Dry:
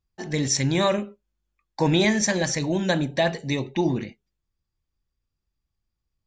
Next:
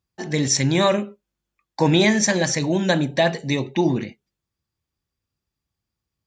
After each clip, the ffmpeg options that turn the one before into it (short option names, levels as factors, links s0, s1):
-af "highpass=86,volume=1.5"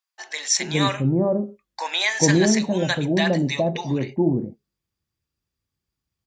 -filter_complex "[0:a]acrossover=split=750[s0][s1];[s0]adelay=410[s2];[s2][s1]amix=inputs=2:normalize=0"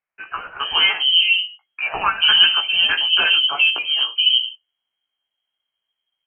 -af "flanger=delay=15.5:depth=2.4:speed=0.48,lowpass=f=2800:t=q:w=0.5098,lowpass=f=2800:t=q:w=0.6013,lowpass=f=2800:t=q:w=0.9,lowpass=f=2800:t=q:w=2.563,afreqshift=-3300,volume=2.37"